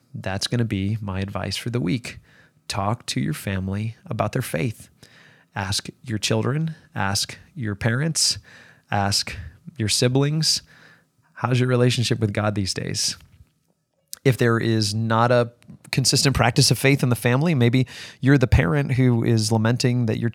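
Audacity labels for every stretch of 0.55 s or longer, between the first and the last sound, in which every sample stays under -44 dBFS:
13.420000	14.130000	silence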